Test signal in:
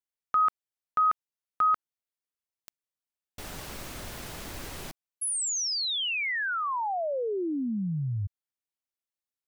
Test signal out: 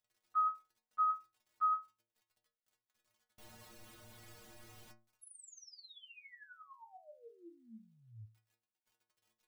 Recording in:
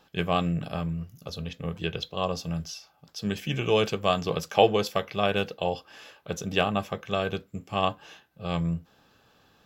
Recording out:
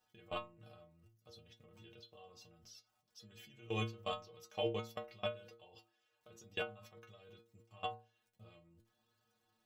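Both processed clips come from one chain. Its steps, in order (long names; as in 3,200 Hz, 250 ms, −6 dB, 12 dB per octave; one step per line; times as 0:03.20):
surface crackle 230 per second −49 dBFS
output level in coarse steps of 23 dB
stiff-string resonator 110 Hz, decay 0.41 s, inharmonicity 0.008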